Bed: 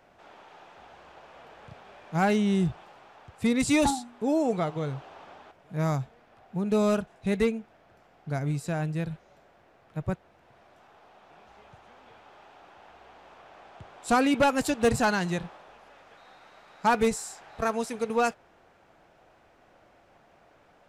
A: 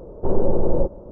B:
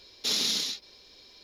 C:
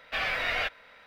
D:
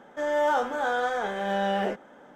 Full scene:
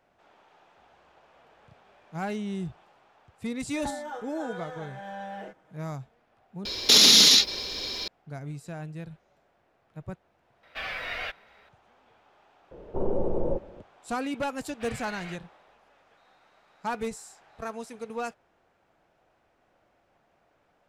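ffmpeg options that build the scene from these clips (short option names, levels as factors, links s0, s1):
-filter_complex "[3:a]asplit=2[s0][s1];[0:a]volume=0.376[s2];[4:a]aecho=1:1:6.3:0.97[s3];[2:a]alimiter=level_in=18.8:limit=0.891:release=50:level=0:latency=1[s4];[1:a]lowshelf=f=140:g=-5.5[s5];[s2]asplit=2[s6][s7];[s6]atrim=end=6.654[s8];[s4]atrim=end=1.43,asetpts=PTS-STARTPTS,volume=0.531[s9];[s7]atrim=start=8.076[s10];[s3]atrim=end=2.35,asetpts=PTS-STARTPTS,volume=0.158,afade=t=in:d=0.004:c=hsin,afade=t=out:st=2.346:d=0.004:c=hsin,adelay=157437S[s11];[s0]atrim=end=1.06,asetpts=PTS-STARTPTS,volume=0.562,afade=t=in:d=0.004:c=hsin,afade=t=out:st=1.056:d=0.004:c=hsin,adelay=10630[s12];[s5]atrim=end=1.11,asetpts=PTS-STARTPTS,volume=0.501,afade=t=in:d=0.004:c=hsin,afade=t=out:st=1.106:d=0.004:c=hsin,adelay=12710[s13];[s1]atrim=end=1.06,asetpts=PTS-STARTPTS,volume=0.188,afade=t=in:d=0.004:c=hsin,afade=t=out:st=1.056:d=0.004:c=hsin,adelay=14680[s14];[s8][s9]acrossfade=d=0.004:c1=hsin:c2=hsin[s15];[s15][s10]acrossfade=d=0.004:c1=hsin:c2=hsin[s16];[s16][s11][s12][s13][s14]amix=inputs=5:normalize=0"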